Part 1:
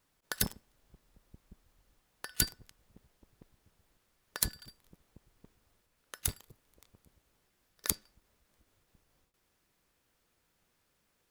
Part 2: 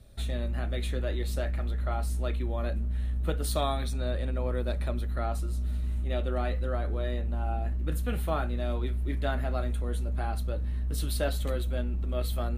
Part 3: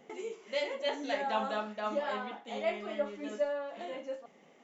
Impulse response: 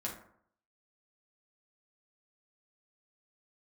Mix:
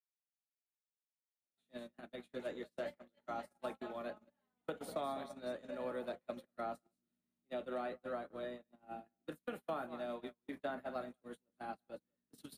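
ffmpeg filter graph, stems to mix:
-filter_complex "[1:a]adynamicequalizer=threshold=0.00355:dfrequency=280:dqfactor=2.6:tfrequency=280:tqfactor=2.6:attack=5:release=100:ratio=0.375:range=2.5:mode=boostabove:tftype=bell,highpass=f=180:w=0.5412,highpass=f=180:w=1.3066,adelay=1400,volume=-3.5dB,asplit=2[a][b];[b]volume=-12dB[c];[2:a]acompressor=threshold=-47dB:ratio=1.5,adelay=2300,volume=-6.5dB[d];[c]aecho=0:1:196:1[e];[a][d][e]amix=inputs=3:normalize=0,agate=range=-40dB:threshold=-37dB:ratio=16:detection=peak,acrossover=split=200|420|1500[f][g][h][i];[f]acompressor=threshold=-55dB:ratio=4[j];[g]acompressor=threshold=-57dB:ratio=4[k];[h]acompressor=threshold=-38dB:ratio=4[l];[i]acompressor=threshold=-57dB:ratio=4[m];[j][k][l][m]amix=inputs=4:normalize=0"

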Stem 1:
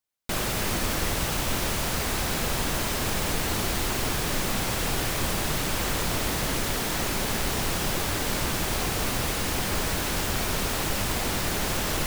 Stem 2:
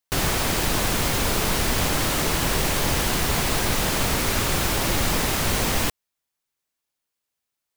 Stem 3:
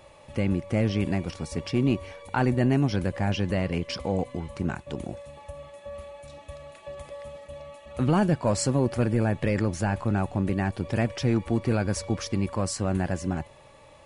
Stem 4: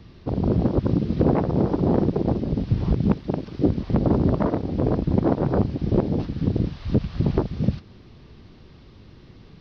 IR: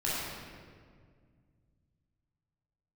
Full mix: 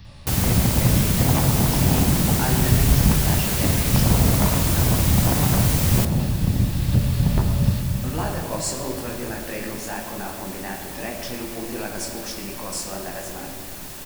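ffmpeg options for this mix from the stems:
-filter_complex "[0:a]adelay=2200,volume=-16.5dB,asplit=2[a][b];[b]volume=-11dB[c];[1:a]adelay=150,volume=-7dB[d];[2:a]highpass=330,flanger=delay=18.5:depth=6.5:speed=2.7,adelay=50,volume=-2.5dB,asplit=2[e][f];[f]volume=-8.5dB[g];[3:a]equalizer=f=380:w=0.86:g=-14,volume=1.5dB,asplit=2[h][i];[i]volume=-9dB[j];[4:a]atrim=start_sample=2205[k];[c][g][j]amix=inputs=3:normalize=0[l];[l][k]afir=irnorm=-1:irlink=0[m];[a][d][e][h][m]amix=inputs=5:normalize=0,crystalizer=i=1.5:c=0"

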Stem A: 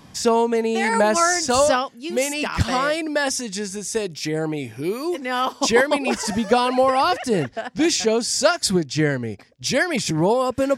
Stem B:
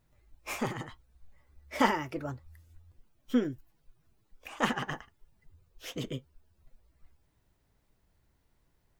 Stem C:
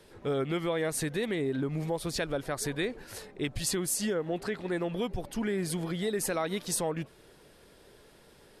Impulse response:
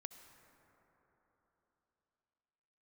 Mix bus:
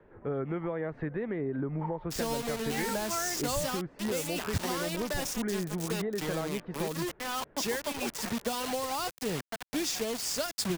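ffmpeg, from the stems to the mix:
-filter_complex "[0:a]acrusher=bits=3:mix=0:aa=0.000001,adelay=1950,volume=-11.5dB[a];[1:a]bandpass=f=900:t=q:w=11:csg=0,volume=-7.5dB[b];[2:a]lowpass=f=1.8k:w=0.5412,lowpass=f=1.8k:w=1.3066,volume=-1dB[c];[a][b][c]amix=inputs=3:normalize=0,acrossover=split=230|3000[d][e][f];[e]acompressor=threshold=-31dB:ratio=6[g];[d][g][f]amix=inputs=3:normalize=0"

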